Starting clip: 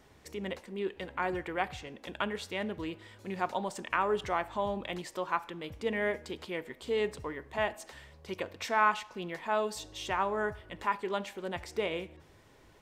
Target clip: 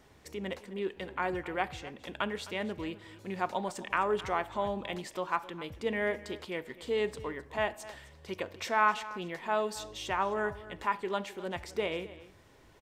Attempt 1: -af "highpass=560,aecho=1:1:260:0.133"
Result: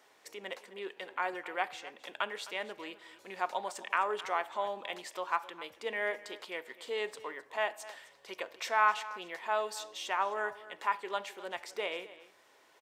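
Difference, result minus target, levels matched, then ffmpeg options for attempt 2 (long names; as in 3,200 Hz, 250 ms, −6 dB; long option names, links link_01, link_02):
500 Hz band −2.5 dB
-af "aecho=1:1:260:0.133"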